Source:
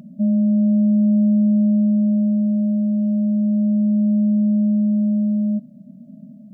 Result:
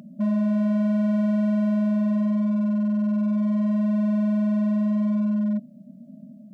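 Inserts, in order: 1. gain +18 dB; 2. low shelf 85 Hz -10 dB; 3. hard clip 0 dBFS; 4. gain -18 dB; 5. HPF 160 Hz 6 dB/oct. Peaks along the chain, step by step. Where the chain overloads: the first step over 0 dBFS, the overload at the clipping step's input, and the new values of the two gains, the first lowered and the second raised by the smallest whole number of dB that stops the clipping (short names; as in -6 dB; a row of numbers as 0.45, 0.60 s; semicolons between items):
+7.0, +5.5, 0.0, -18.0, -16.0 dBFS; step 1, 5.5 dB; step 1 +12 dB, step 4 -12 dB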